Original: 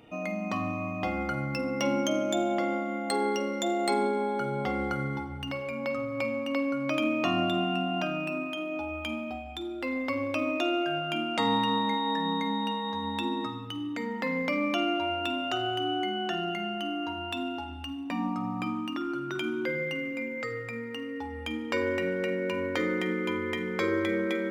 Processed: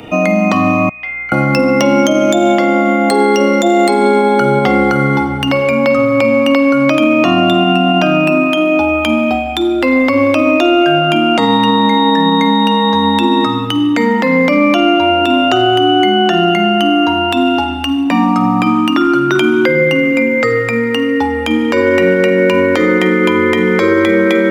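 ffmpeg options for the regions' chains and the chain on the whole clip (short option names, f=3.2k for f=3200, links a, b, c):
-filter_complex "[0:a]asettb=1/sr,asplit=3[a][b][c];[a]atrim=end=0.894[d];[b]atrim=start=0.89:end=1.32,asetpts=PTS-STARTPTS,afade=t=in:d=0.004:c=qsin,afade=t=out:st=0.426:d=0.004:c=qsin,bandpass=f=2.2k:t=q:w=13,aeval=exprs='val(0)+0.000398*(sin(2*PI*60*n/s)+sin(2*PI*2*60*n/s)/2+sin(2*PI*3*60*n/s)/3+sin(2*PI*4*60*n/s)/4+sin(2*PI*5*60*n/s)/5)':c=same[e];[c]atrim=start=1.316[f];[d][e]acrossfade=d=0.004:c1=hsin:c2=qsin[g];[g][f]acrossfade=d=0.004:c1=qsin:c2=hsin,acrossover=split=130|570|1300[h][i][j][k];[h]acompressor=threshold=-57dB:ratio=4[l];[i]acompressor=threshold=-33dB:ratio=4[m];[j]acompressor=threshold=-40dB:ratio=4[n];[k]acompressor=threshold=-41dB:ratio=4[o];[l][m][n][o]amix=inputs=4:normalize=0,alimiter=level_in=24dB:limit=-1dB:release=50:level=0:latency=1,volume=-1dB"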